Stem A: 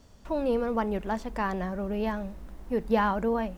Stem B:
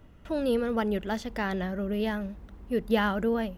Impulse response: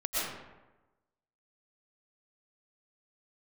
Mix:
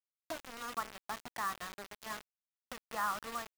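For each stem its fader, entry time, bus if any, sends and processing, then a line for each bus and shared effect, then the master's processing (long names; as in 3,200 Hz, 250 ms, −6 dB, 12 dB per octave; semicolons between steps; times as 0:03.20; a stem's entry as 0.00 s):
−3.0 dB, 0.00 s, no send, comb filter 1.6 ms, depth 50%; hum removal 111.4 Hz, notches 16; envelope filter 410–1,200 Hz, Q 3.4, up, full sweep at −26 dBFS
−6.0 dB, 0.00 s, no send, downward compressor 4 to 1, threshold −35 dBFS, peak gain reduction 14 dB; phaser with its sweep stopped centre 3,000 Hz, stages 6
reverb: not used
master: bass and treble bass −12 dB, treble 0 dB; bit reduction 7 bits; one half of a high-frequency compander encoder only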